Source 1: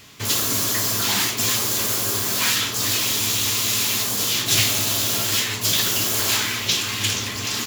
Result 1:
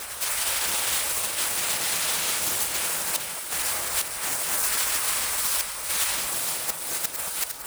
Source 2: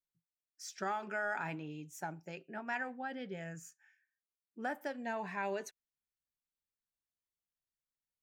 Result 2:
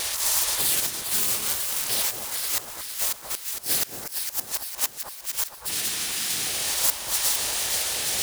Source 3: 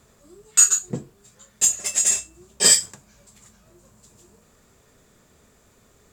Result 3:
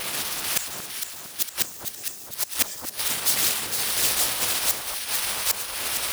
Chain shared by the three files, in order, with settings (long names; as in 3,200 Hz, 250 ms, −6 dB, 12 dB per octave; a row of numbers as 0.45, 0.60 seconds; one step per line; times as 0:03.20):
spike at every zero crossing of −13 dBFS
wind on the microphone 310 Hz −27 dBFS
dynamic equaliser 9,600 Hz, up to −5 dB, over −35 dBFS, Q 3.5
high-pass filter 120 Hz 12 dB per octave
hollow resonant body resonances 750/1,800 Hz, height 7 dB, ringing for 40 ms
gate on every frequency bin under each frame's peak −15 dB weak
gate with flip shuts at −14 dBFS, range −26 dB
high-shelf EQ 4,800 Hz +5.5 dB
leveller curve on the samples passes 1
delay that swaps between a low-pass and a high-pass 229 ms, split 1,400 Hz, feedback 71%, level −3.5 dB
highs frequency-modulated by the lows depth 0.78 ms
loudness normalisation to −24 LKFS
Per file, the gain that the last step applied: −3.0, +1.0, +2.5 decibels